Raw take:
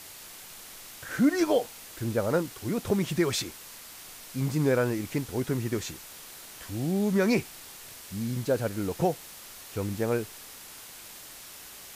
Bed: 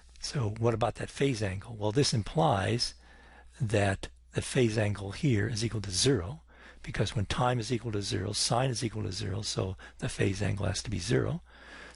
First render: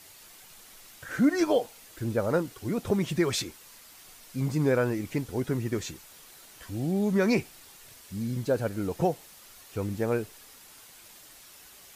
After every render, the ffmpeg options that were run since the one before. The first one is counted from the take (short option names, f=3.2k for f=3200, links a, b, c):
-af "afftdn=nr=7:nf=-46"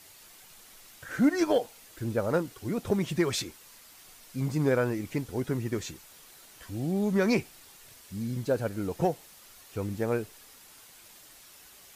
-af "aeval=exprs='0.211*(cos(1*acos(clip(val(0)/0.211,-1,1)))-cos(1*PI/2))+0.0119*(cos(3*acos(clip(val(0)/0.211,-1,1)))-cos(3*PI/2))':c=same"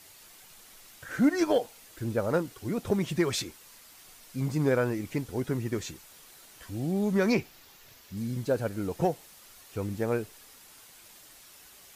-filter_complex "[0:a]asettb=1/sr,asplit=3[a][b][c];[a]atrim=end=7.324[d];[b]atrim=start=7.32:end=8.17,asetpts=PTS-STARTPTS,afade=t=in:d=0.004:c=qsin,afade=t=out:st=0.846:d=0.004:c=qsin,equalizer=f=9k:t=o:w=0.42:g=-11.5[e];[c]atrim=start=8.166[f];[d][e]acrossfade=d=0.004:c1=hsin:c2=qsin[g];[g][f]acrossfade=d=0.004:c1=qsin:c2=hsin"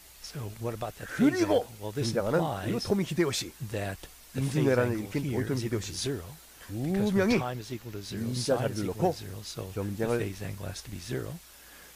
-filter_complex "[1:a]volume=-6.5dB[a];[0:a][a]amix=inputs=2:normalize=0"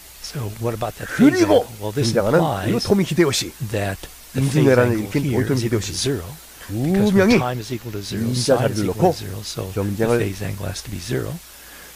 -af "volume=10.5dB"